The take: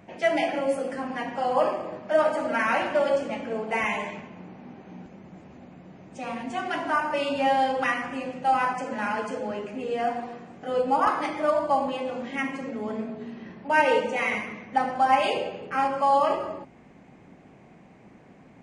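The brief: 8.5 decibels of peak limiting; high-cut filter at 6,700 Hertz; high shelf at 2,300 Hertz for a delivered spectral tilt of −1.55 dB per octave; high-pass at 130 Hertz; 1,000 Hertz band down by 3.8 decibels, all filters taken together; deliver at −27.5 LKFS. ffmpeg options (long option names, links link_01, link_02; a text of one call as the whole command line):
ffmpeg -i in.wav -af "highpass=130,lowpass=6700,equalizer=frequency=1000:width_type=o:gain=-6.5,highshelf=frequency=2300:gain=8,volume=1.5dB,alimiter=limit=-16.5dB:level=0:latency=1" out.wav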